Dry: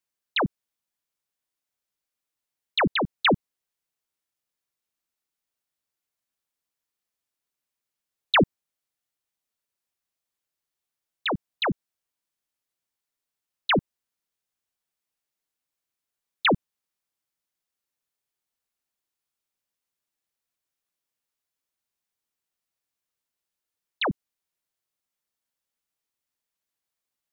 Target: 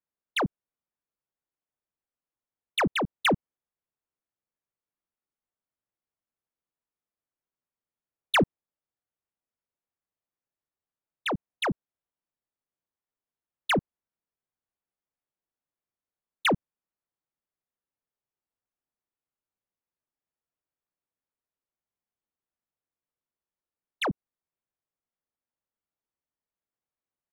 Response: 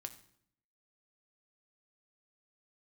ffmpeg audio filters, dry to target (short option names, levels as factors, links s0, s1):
-filter_complex "[0:a]aresample=8000,aresample=44100,asplit=2[s0][s1];[s1]asoftclip=type=tanh:threshold=0.0447,volume=0.447[s2];[s0][s2]amix=inputs=2:normalize=0,adynamicsmooth=sensitivity=2.5:basefreq=1600,volume=0.631"